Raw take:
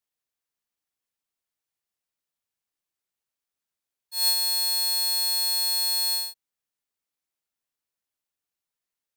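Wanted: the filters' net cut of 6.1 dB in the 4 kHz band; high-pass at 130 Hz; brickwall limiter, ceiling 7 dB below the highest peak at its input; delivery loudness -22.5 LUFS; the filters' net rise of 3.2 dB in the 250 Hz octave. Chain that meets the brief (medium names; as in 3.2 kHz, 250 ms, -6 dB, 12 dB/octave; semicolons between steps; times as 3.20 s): high-pass 130 Hz; peaking EQ 250 Hz +7.5 dB; peaking EQ 4 kHz -6.5 dB; trim +5 dB; peak limiter -17 dBFS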